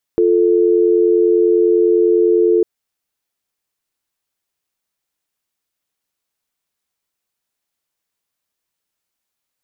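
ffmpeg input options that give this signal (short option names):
-f lavfi -i "aevalsrc='0.237*(sin(2*PI*350*t)+sin(2*PI*440*t))':d=2.45:s=44100"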